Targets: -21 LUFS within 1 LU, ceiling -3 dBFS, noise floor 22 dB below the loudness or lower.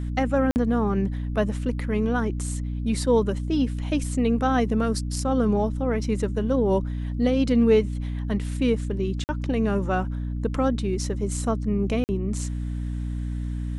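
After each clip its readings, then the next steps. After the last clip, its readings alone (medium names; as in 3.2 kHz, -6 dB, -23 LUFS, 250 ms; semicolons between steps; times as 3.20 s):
dropouts 3; longest dropout 49 ms; hum 60 Hz; highest harmonic 300 Hz; hum level -26 dBFS; loudness -25.0 LUFS; peak level -8.5 dBFS; loudness target -21.0 LUFS
-> interpolate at 0.51/9.24/12.04 s, 49 ms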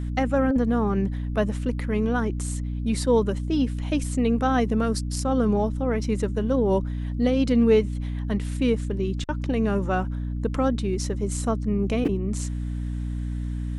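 dropouts 0; hum 60 Hz; highest harmonic 300 Hz; hum level -26 dBFS
-> de-hum 60 Hz, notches 5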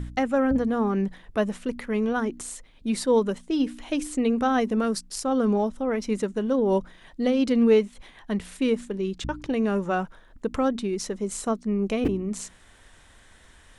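hum not found; loudness -25.5 LUFS; peak level -9.5 dBFS; loudness target -21.0 LUFS
-> trim +4.5 dB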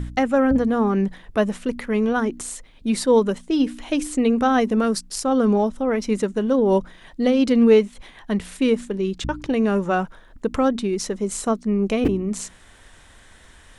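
loudness -21.0 LUFS; peak level -5.0 dBFS; noise floor -49 dBFS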